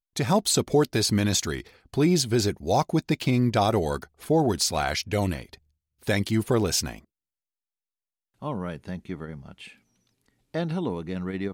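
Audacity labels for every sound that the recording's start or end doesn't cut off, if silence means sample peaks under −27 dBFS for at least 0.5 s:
6.070000	6.950000	sound
8.440000	9.320000	sound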